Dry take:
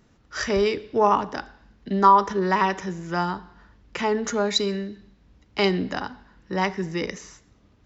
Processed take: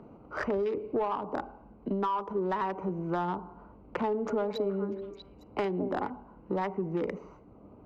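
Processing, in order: Wiener smoothing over 25 samples; high shelf 3800 Hz -11 dB; compressor 10:1, threshold -28 dBFS, peak gain reduction 17.5 dB; overdrive pedal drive 17 dB, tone 1000 Hz, clips at -16 dBFS; 4.07–6.1 delay with a stepping band-pass 0.214 s, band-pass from 490 Hz, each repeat 1.4 oct, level -5.5 dB; three-band squash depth 40%; gain -1.5 dB

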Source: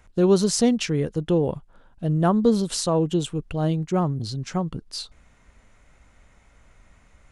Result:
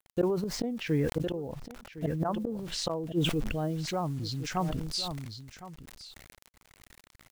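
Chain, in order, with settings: 0.53–1.2 G.711 law mismatch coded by A; treble ducked by the level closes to 1200 Hz, closed at -17 dBFS; 2.21–2.74 de-hum 169.6 Hz, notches 3; spectral noise reduction 8 dB; dynamic EQ 120 Hz, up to -4 dB, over -34 dBFS, Q 0.72; 3.46–4.57 compressor 2:1, threshold -32 dBFS, peak gain reduction 6.5 dB; bit-crush 9-bit; flipped gate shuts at -18 dBFS, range -28 dB; echo 1.06 s -15.5 dB; sustainer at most 33 dB/s

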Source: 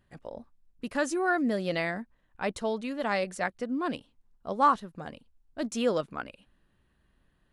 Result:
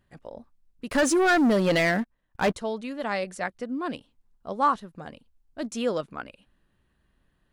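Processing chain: 0.89–2.54 sample leveller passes 3

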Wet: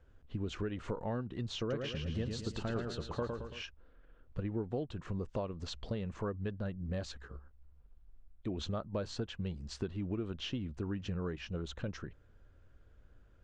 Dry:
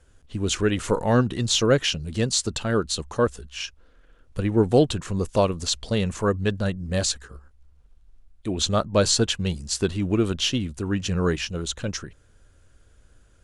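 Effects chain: high shelf 3000 Hz -9.5 dB; compressor 6:1, threshold -29 dBFS, peak gain reduction 15.5 dB; air absorption 130 m; 1.59–3.62 warbling echo 0.111 s, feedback 51%, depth 62 cents, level -4.5 dB; gain -5 dB

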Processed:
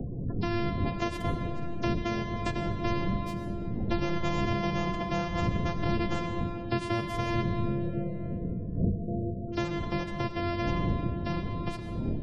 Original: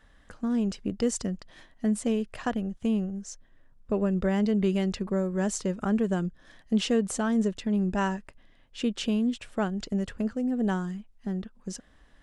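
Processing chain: sample sorter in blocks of 128 samples; wind noise 160 Hz -30 dBFS; 7.43–9.48 rippled Chebyshev low-pass 680 Hz, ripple 6 dB; spectral gate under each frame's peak -25 dB strong; flange 0.51 Hz, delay 8.9 ms, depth 1.8 ms, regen +78%; digital reverb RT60 1.9 s, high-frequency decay 0.6×, pre-delay 50 ms, DRR 7 dB; three-band squash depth 70%

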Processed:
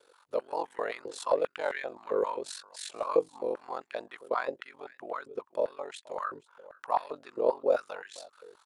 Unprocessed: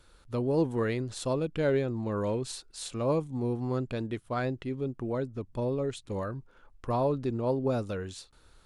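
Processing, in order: echo 0.479 s -21 dB; ring modulator 23 Hz; stepped high-pass 7.6 Hz 450–1800 Hz

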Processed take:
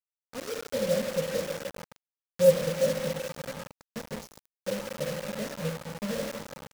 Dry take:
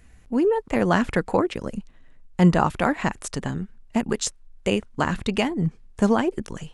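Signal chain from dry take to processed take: half-waves squared off; EQ curve 100 Hz 0 dB, 150 Hz +12 dB, 250 Hz -2 dB, 380 Hz -18 dB, 550 Hz -3 dB, 810 Hz -17 dB, 1200 Hz -8 dB, 2800 Hz -24 dB, 5500 Hz +7 dB, 9600 Hz -9 dB; Schroeder reverb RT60 2.4 s, combs from 33 ms, DRR 2 dB; soft clip -6.5 dBFS, distortion -11 dB; vowel filter e; doubler 19 ms -6.5 dB; pre-echo 57 ms -22 dB; requantised 6-bit, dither none; upward expander 1.5:1, over -46 dBFS; gain +7 dB

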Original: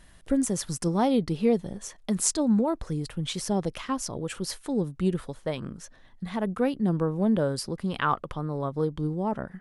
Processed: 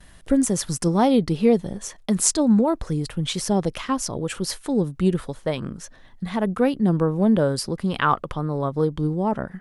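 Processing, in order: gate with hold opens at -46 dBFS; gain +5.5 dB

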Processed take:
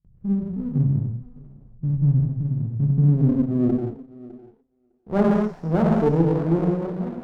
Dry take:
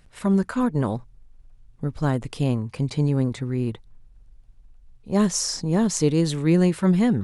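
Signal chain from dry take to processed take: ending faded out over 1.09 s; 2.24–2.71 compressor 3:1, threshold -26 dBFS, peak gain reduction 7.5 dB; 3.37–5.18 HPF 84 Hz 12 dB/oct; non-linear reverb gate 0.26 s flat, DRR -2.5 dB; low-pass sweep 140 Hz -> 770 Hz, 2.66–4.71; gate with hold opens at -47 dBFS; thinning echo 0.606 s, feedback 23%, high-pass 1200 Hz, level -6.5 dB; running maximum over 17 samples; gain -3 dB

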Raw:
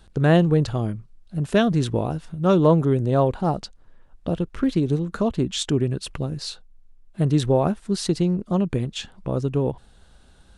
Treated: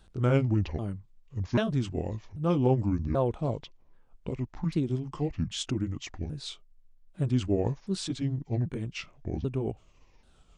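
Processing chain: repeated pitch sweeps -9 st, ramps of 0.787 s; gain -6.5 dB

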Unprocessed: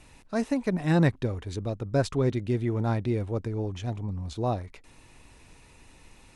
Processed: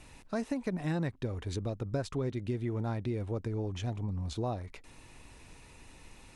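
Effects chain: compressor 4:1, threshold -31 dBFS, peak gain reduction 12.5 dB

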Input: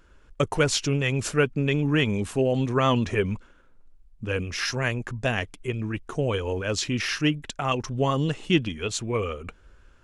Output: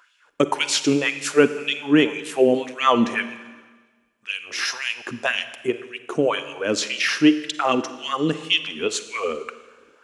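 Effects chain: LFO high-pass sine 1.9 Hz 250–3200 Hz; Schroeder reverb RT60 1.4 s, DRR 12 dB; gain +3 dB

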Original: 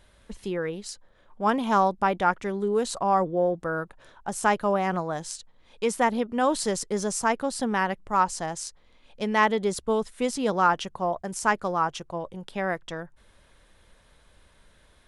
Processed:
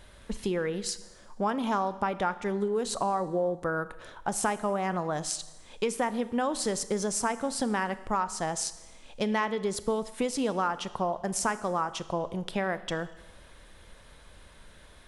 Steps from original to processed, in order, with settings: compressor 5:1, threshold -32 dBFS, peak gain reduction 15 dB; on a send: reverb RT60 1.1 s, pre-delay 26 ms, DRR 14 dB; on the sum: gain +5.5 dB

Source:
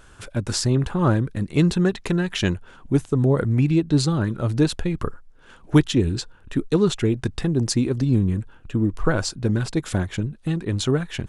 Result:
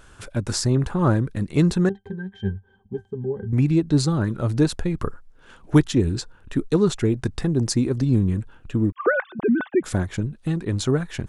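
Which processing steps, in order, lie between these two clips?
8.92–9.84 sine-wave speech; dynamic EQ 3000 Hz, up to -6 dB, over -46 dBFS, Q 1.8; 1.89–3.53 octave resonator G, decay 0.11 s

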